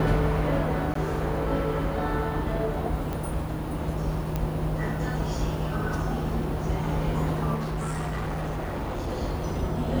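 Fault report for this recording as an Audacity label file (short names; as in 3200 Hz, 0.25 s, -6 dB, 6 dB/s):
0.940000	0.950000	gap 14 ms
3.130000	3.130000	pop
4.360000	4.360000	pop -15 dBFS
7.540000	9.090000	clipped -26.5 dBFS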